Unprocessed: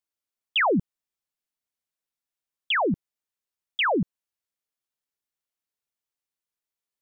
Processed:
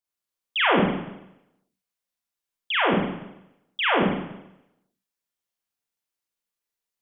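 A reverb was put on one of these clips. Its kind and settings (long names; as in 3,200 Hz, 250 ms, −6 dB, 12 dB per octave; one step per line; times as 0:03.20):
four-comb reverb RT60 0.86 s, combs from 32 ms, DRR −5 dB
level −3.5 dB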